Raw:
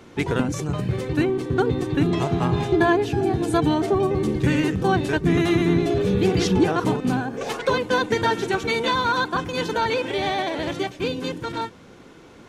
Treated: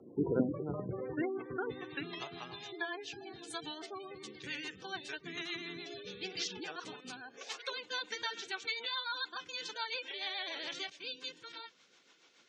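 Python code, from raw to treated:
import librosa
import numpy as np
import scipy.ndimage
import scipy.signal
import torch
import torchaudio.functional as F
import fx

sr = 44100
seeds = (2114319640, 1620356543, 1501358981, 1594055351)

y = fx.filter_sweep_bandpass(x, sr, from_hz=350.0, to_hz=4800.0, start_s=0.25, end_s=2.49, q=0.84)
y = fx.spec_gate(y, sr, threshold_db=-20, keep='strong')
y = fx.rotary(y, sr, hz=7.0)
y = fx.env_flatten(y, sr, amount_pct=50, at=(10.21, 10.9))
y = y * 10.0 ** (-4.0 / 20.0)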